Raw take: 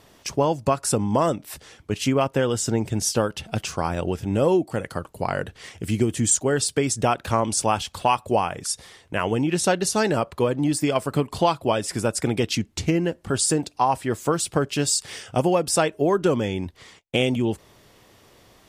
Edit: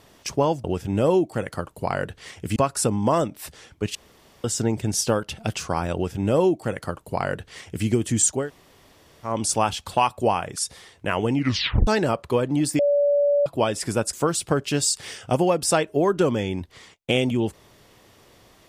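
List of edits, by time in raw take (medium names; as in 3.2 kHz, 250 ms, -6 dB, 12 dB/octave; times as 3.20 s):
2.03–2.52 s: room tone
4.02–5.94 s: copy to 0.64 s
6.51–7.38 s: room tone, crossfade 0.16 s
9.42 s: tape stop 0.53 s
10.87–11.54 s: bleep 575 Hz -16 dBFS
12.21–14.18 s: delete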